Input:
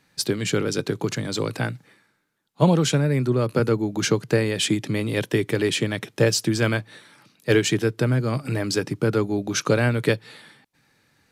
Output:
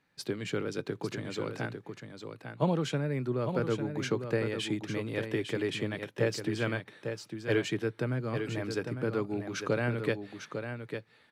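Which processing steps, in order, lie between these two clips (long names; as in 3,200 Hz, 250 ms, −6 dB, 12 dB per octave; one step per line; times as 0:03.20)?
bass and treble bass −3 dB, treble −10 dB
single-tap delay 851 ms −7.5 dB
level −9 dB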